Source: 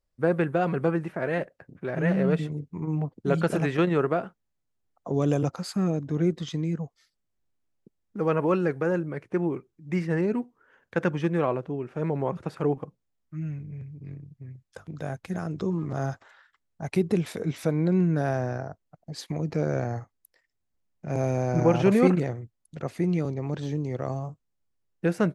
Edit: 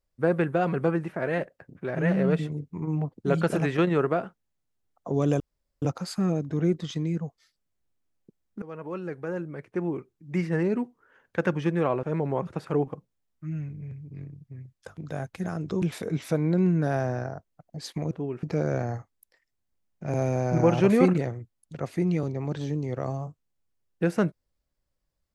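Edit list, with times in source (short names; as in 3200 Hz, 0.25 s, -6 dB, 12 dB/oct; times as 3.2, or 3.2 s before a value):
5.4 insert room tone 0.42 s
8.2–9.9 fade in, from -19 dB
11.61–11.93 move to 19.45
15.72–17.16 cut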